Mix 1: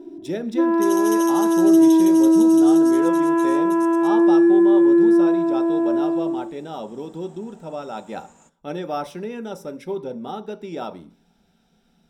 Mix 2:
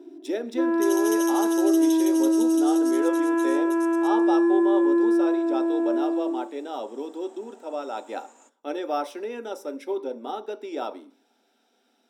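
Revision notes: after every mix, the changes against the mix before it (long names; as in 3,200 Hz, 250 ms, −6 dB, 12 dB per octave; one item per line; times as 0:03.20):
first sound: send −9.0 dB
master: add elliptic high-pass filter 260 Hz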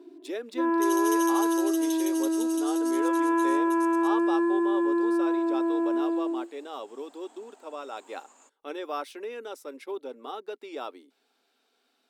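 reverb: off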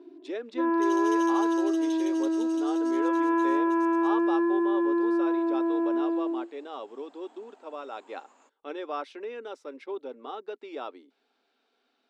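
master: add high-frequency loss of the air 130 metres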